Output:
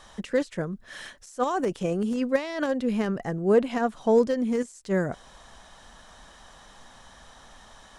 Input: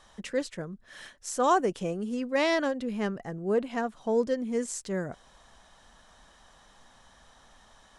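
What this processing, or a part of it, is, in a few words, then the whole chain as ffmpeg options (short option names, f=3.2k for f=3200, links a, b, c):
de-esser from a sidechain: -filter_complex "[0:a]asplit=2[a][b];[b]highpass=6.6k,apad=whole_len=352165[c];[a][c]sidechaincompress=threshold=-52dB:ratio=12:attack=0.56:release=63,volume=7dB"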